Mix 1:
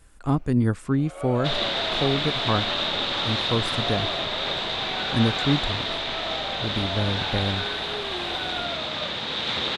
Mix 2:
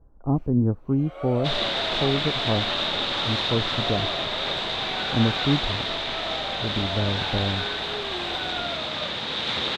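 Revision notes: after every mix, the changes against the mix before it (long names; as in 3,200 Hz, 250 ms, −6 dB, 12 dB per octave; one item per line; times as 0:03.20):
speech: add inverse Chebyshev low-pass filter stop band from 3,900 Hz, stop band 70 dB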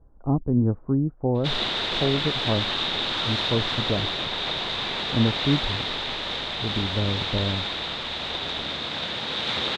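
first sound: muted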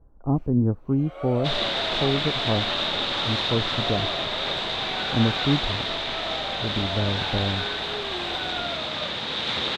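first sound: unmuted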